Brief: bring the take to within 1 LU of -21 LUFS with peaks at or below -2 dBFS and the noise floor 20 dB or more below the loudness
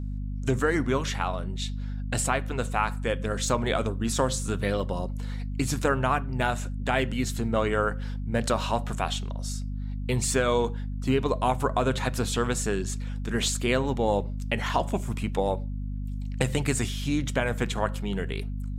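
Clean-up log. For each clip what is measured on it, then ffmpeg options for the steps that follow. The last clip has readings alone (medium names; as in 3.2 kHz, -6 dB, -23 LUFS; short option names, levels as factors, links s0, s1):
hum 50 Hz; highest harmonic 250 Hz; hum level -29 dBFS; loudness -28.0 LUFS; peak level -9.5 dBFS; loudness target -21.0 LUFS
-> -af "bandreject=f=50:t=h:w=4,bandreject=f=100:t=h:w=4,bandreject=f=150:t=h:w=4,bandreject=f=200:t=h:w=4,bandreject=f=250:t=h:w=4"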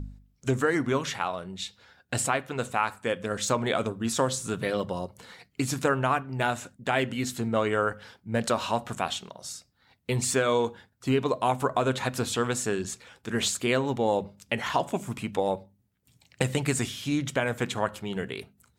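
hum not found; loudness -28.5 LUFS; peak level -10.5 dBFS; loudness target -21.0 LUFS
-> -af "volume=2.37"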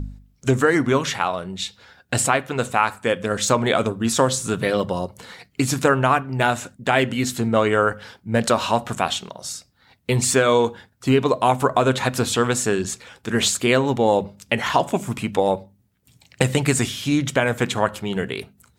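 loudness -21.0 LUFS; peak level -3.0 dBFS; noise floor -61 dBFS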